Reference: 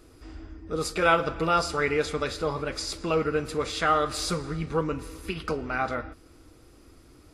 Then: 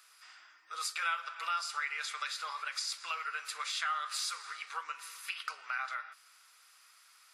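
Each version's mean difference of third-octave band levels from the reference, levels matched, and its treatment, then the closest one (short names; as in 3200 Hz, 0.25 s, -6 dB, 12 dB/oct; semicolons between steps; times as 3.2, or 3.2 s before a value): 14.5 dB: HPF 1200 Hz 24 dB/oct; compressor 2.5:1, threshold -38 dBFS, peak gain reduction 12.5 dB; gain +2 dB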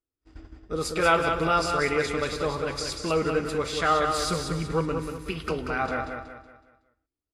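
5.0 dB: gate -40 dBFS, range -40 dB; feedback echo 0.186 s, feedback 39%, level -6 dB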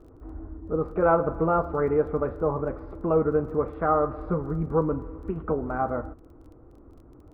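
8.5 dB: LPF 1100 Hz 24 dB/oct; crackle 12/s -51 dBFS; gain +3.5 dB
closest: second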